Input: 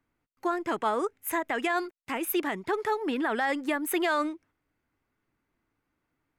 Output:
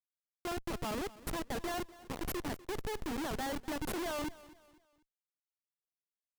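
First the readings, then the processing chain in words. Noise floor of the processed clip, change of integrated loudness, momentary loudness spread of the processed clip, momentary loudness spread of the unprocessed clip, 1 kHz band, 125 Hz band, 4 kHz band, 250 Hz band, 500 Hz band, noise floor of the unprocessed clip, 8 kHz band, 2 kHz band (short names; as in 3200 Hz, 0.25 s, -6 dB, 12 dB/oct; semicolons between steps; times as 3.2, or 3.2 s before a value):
under -85 dBFS, -9.5 dB, 6 LU, 6 LU, -11.5 dB, n/a, -5.0 dB, -8.5 dB, -10.0 dB, -81 dBFS, -5.5 dB, -12.5 dB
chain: Schmitt trigger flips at -28 dBFS; on a send: feedback echo 0.247 s, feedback 37%, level -19 dB; on the sum: gain -5 dB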